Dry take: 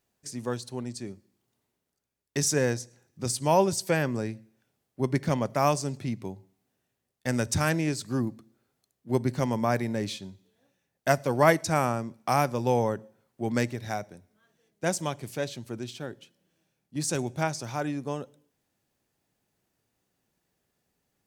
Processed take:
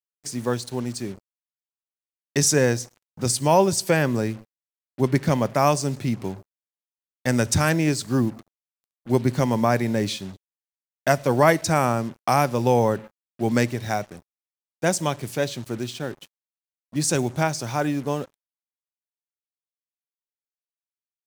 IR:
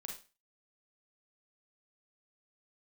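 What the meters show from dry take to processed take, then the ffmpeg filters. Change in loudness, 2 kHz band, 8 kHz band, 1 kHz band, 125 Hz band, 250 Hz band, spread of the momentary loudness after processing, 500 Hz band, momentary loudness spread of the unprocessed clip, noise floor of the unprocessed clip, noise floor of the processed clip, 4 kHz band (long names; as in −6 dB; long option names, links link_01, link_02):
+5.5 dB, +5.0 dB, +6.5 dB, +5.0 dB, +6.0 dB, +6.0 dB, 12 LU, +5.0 dB, 14 LU, −81 dBFS, below −85 dBFS, +6.5 dB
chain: -filter_complex "[0:a]asplit=2[link_01][link_02];[link_02]alimiter=limit=-15.5dB:level=0:latency=1:release=223,volume=1.5dB[link_03];[link_01][link_03]amix=inputs=2:normalize=0,acrusher=bits=6:mix=0:aa=0.5"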